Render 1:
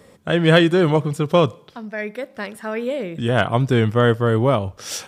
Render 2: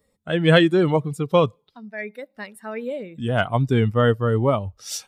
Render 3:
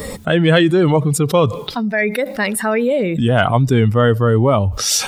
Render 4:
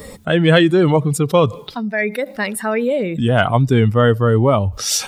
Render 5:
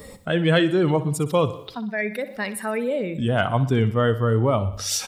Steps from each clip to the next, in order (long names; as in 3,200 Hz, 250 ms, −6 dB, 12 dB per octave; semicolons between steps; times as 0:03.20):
spectral dynamics exaggerated over time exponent 1.5
envelope flattener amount 70%; level +1 dB
expander for the loud parts 1.5 to 1, over −29 dBFS; level +1 dB
repeating echo 61 ms, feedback 57%, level −15 dB; level −6.5 dB